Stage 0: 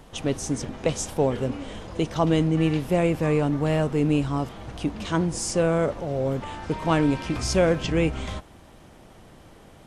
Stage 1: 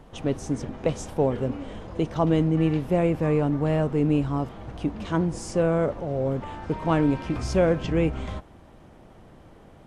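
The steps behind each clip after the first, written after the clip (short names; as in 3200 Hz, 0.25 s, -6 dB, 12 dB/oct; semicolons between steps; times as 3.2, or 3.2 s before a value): high shelf 2500 Hz -11 dB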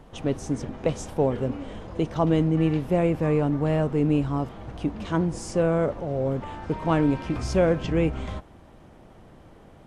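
nothing audible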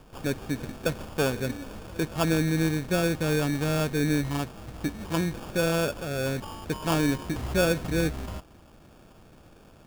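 sample-and-hold 22×; gain -3 dB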